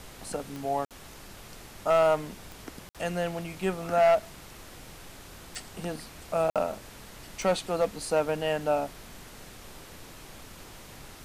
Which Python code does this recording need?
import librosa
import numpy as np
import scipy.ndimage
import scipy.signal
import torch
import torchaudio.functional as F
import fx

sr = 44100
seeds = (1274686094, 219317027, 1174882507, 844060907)

y = fx.fix_declip(x, sr, threshold_db=-16.5)
y = fx.fix_declick_ar(y, sr, threshold=10.0)
y = fx.fix_interpolate(y, sr, at_s=(0.85, 2.89, 6.5), length_ms=57.0)
y = fx.noise_reduce(y, sr, print_start_s=0.9, print_end_s=1.4, reduce_db=25.0)